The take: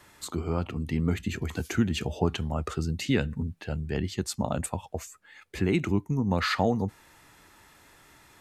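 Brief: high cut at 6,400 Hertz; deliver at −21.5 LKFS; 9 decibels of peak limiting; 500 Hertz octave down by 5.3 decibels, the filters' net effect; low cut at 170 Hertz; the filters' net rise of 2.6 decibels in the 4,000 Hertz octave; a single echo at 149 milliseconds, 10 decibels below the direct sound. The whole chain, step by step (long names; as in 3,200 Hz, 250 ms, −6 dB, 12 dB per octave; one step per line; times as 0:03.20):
high-pass filter 170 Hz
low-pass filter 6,400 Hz
parametric band 500 Hz −7 dB
parametric band 4,000 Hz +4 dB
brickwall limiter −22.5 dBFS
single-tap delay 149 ms −10 dB
level +13 dB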